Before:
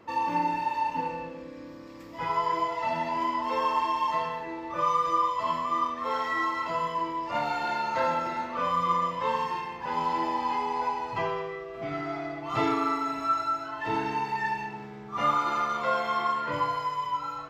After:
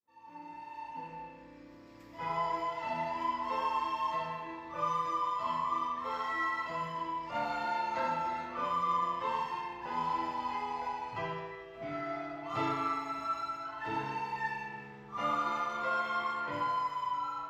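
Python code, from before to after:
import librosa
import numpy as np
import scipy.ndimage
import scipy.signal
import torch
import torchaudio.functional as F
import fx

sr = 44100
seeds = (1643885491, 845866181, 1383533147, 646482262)

y = fx.fade_in_head(x, sr, length_s=2.18)
y = fx.rev_spring(y, sr, rt60_s=1.1, pass_ms=(37,), chirp_ms=50, drr_db=2.5)
y = F.gain(torch.from_numpy(y), -7.5).numpy()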